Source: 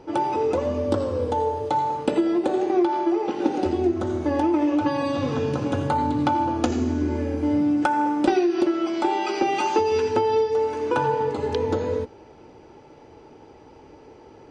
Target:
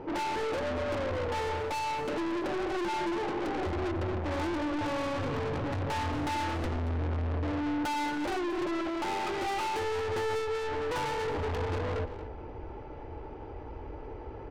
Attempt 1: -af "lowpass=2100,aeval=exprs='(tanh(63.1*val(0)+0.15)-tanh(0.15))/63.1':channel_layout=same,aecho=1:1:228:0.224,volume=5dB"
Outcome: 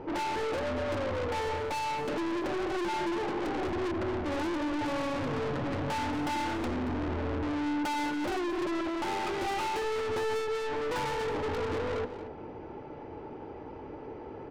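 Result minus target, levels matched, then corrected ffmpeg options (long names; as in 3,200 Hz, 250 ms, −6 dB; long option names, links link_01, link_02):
125 Hz band −4.5 dB
-af "lowpass=2100,asubboost=boost=9.5:cutoff=58,aeval=exprs='(tanh(63.1*val(0)+0.15)-tanh(0.15))/63.1':channel_layout=same,aecho=1:1:228:0.224,volume=5dB"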